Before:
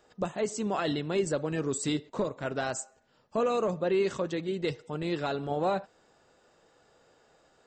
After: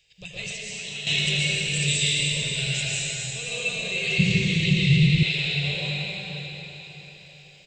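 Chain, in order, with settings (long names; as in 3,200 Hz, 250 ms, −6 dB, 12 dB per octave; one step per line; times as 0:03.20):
drawn EQ curve 150 Hz 0 dB, 260 Hz −29 dB, 430 Hz −17 dB, 1,300 Hz −26 dB, 2,400 Hz +13 dB, 7,300 Hz +2 dB
single-tap delay 83 ms −12.5 dB
dense smooth reverb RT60 4.6 s, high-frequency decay 0.85×, pre-delay 105 ms, DRR −9.5 dB
0:00.50–0:01.07: downward compressor 6 to 1, threshold −32 dBFS, peak gain reduction 10 dB
0:04.18–0:05.23: low shelf with overshoot 330 Hz +13.5 dB, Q 1.5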